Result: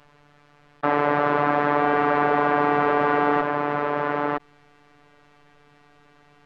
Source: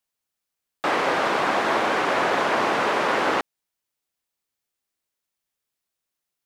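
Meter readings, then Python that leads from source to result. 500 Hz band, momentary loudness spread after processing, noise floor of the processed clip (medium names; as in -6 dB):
+3.0 dB, 5 LU, -56 dBFS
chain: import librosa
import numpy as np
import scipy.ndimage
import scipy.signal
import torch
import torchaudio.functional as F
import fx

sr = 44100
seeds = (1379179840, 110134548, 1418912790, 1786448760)

p1 = scipy.signal.sosfilt(scipy.signal.butter(2, 1600.0, 'lowpass', fs=sr, output='sos'), x)
p2 = fx.low_shelf(p1, sr, hz=210.0, db=7.5)
p3 = fx.robotise(p2, sr, hz=146.0)
p4 = p3 + fx.echo_single(p3, sr, ms=963, db=-7.5, dry=0)
p5 = fx.env_flatten(p4, sr, amount_pct=50)
y = F.gain(torch.from_numpy(p5), 2.5).numpy()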